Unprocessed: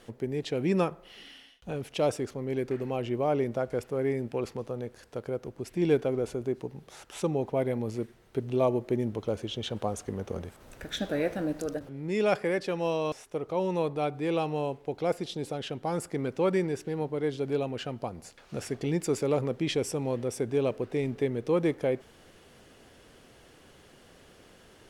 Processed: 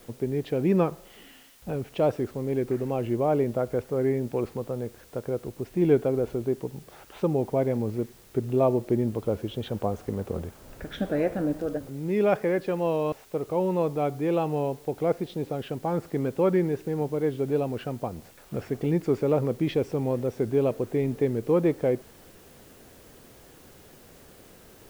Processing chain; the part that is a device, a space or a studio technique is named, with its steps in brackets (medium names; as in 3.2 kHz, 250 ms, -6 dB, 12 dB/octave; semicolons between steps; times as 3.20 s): cassette deck with a dirty head (tape spacing loss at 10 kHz 33 dB; wow and flutter; white noise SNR 29 dB); trim +5 dB